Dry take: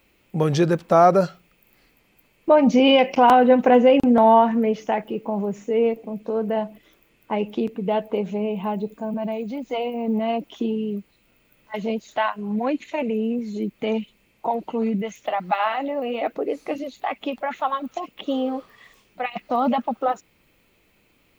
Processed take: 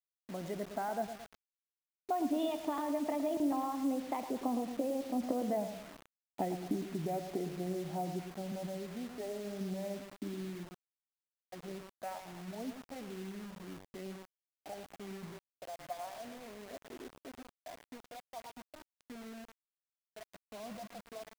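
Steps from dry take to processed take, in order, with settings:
adaptive Wiener filter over 15 samples
source passing by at 0:05.55, 54 m/s, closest 12 metres
downward compressor 20 to 1, threshold −41 dBFS, peak gain reduction 22 dB
hollow resonant body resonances 280/680/2,000 Hz, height 9 dB, ringing for 20 ms
on a send: repeating echo 111 ms, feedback 46%, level −10 dB
on the sum: bit reduction 9 bits
level +4 dB

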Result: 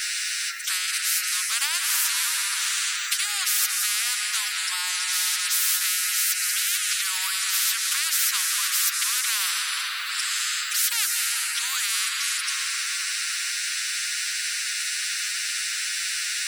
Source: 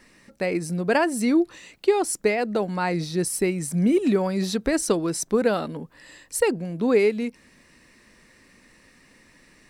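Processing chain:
Chebyshev high-pass with heavy ripple 1,400 Hz, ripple 3 dB
on a send at −6 dB: high-shelf EQ 3,800 Hz −6 dB + convolution reverb RT60 2.4 s, pre-delay 93 ms
on the sum: phase-vocoder stretch with locked phases 1.7×
in parallel at +1 dB: downward compressor, threshold −45 dBFS, peak gain reduction 17.5 dB
on the sum: every bin compressed towards the loudest bin 10 to 1
level +6.5 dB

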